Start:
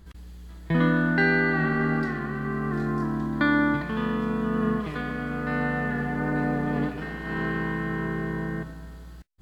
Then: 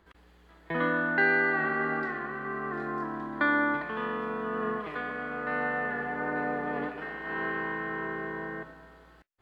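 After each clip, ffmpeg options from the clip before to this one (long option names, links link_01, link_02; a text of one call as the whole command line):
ffmpeg -i in.wav -filter_complex "[0:a]acrossover=split=350 3000:gain=0.126 1 0.178[link_01][link_02][link_03];[link_01][link_02][link_03]amix=inputs=3:normalize=0" out.wav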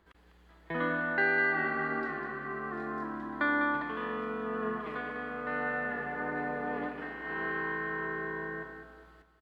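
ffmpeg -i in.wav -af "aecho=1:1:201|402|603|804:0.355|0.117|0.0386|0.0128,volume=-3.5dB" out.wav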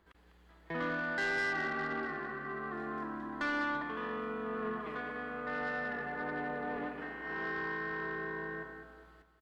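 ffmpeg -i in.wav -af "asoftclip=type=tanh:threshold=-26.5dB,volume=-2dB" out.wav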